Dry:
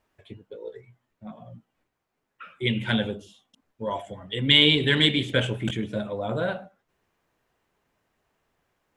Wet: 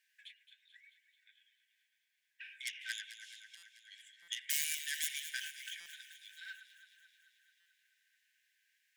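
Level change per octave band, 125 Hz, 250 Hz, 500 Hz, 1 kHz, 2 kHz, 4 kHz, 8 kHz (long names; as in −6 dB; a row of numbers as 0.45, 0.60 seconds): below −40 dB, below −40 dB, below −40 dB, below −40 dB, −15.0 dB, −20.0 dB, +8.5 dB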